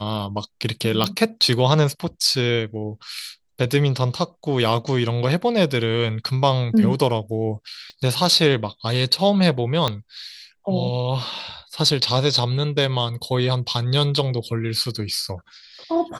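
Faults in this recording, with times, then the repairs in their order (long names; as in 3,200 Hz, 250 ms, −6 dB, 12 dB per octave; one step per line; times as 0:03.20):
0:01.04: click −6 dBFS
0:07.90: click −28 dBFS
0:09.88: click −8 dBFS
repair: click removal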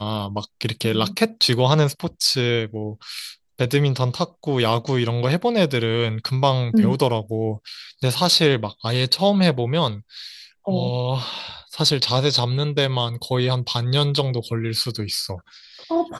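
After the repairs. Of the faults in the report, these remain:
0:07.90: click
0:09.88: click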